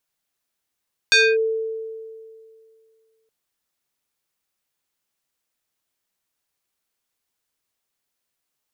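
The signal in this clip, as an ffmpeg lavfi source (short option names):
-f lavfi -i "aevalsrc='0.316*pow(10,-3*t/2.3)*sin(2*PI*445*t+2.4*clip(1-t/0.25,0,1)*sin(2*PI*4.56*445*t))':d=2.17:s=44100"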